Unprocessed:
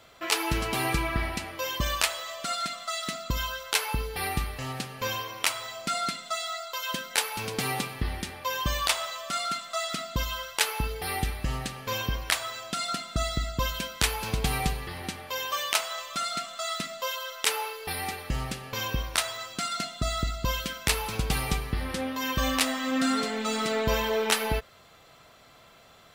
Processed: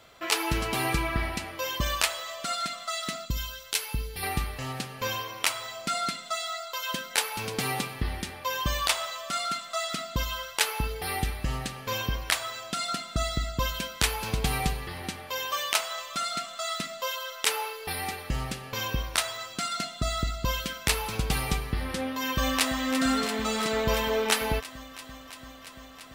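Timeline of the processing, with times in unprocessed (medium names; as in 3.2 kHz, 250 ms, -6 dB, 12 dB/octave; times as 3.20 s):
3.25–4.23 s: peaking EQ 890 Hz -11.5 dB 2.5 oct
22.21–22.79 s: echo throw 340 ms, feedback 85%, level -10 dB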